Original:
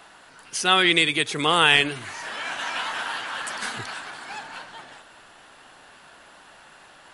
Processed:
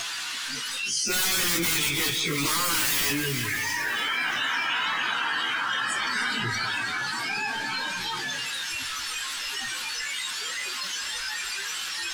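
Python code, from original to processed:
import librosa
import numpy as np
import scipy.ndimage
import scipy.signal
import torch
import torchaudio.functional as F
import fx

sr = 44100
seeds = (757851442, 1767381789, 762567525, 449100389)

y = x + 0.5 * 10.0 ** (-18.0 / 20.0) * np.diff(np.sign(x), prepend=np.sign(x[:1]))
y = scipy.signal.sosfilt(scipy.signal.butter(2, 4300.0, 'lowpass', fs=sr, output='sos'), y)
y = (np.mod(10.0 ** (16.0 / 20.0) * y + 1.0, 2.0) - 1.0) / 10.0 ** (16.0 / 20.0)
y = fx.peak_eq(y, sr, hz=640.0, db=-12.0, octaves=0.95)
y = fx.hum_notches(y, sr, base_hz=50, count=4)
y = fx.stretch_vocoder_free(y, sr, factor=1.7)
y = fx.noise_reduce_blind(y, sr, reduce_db=14)
y = fx.echo_split(y, sr, split_hz=1700.0, low_ms=180, high_ms=312, feedback_pct=52, wet_db=-15)
y = fx.env_flatten(y, sr, amount_pct=70)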